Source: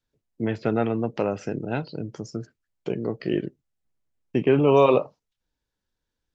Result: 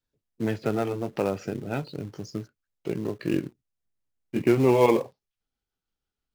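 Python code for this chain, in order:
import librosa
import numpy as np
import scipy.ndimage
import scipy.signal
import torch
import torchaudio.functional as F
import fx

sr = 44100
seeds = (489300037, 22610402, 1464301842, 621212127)

p1 = fx.pitch_glide(x, sr, semitones=-2.5, runs='starting unshifted')
p2 = fx.quant_companded(p1, sr, bits=4)
p3 = p1 + (p2 * 10.0 ** (-7.0 / 20.0))
y = p3 * 10.0 ** (-4.0 / 20.0)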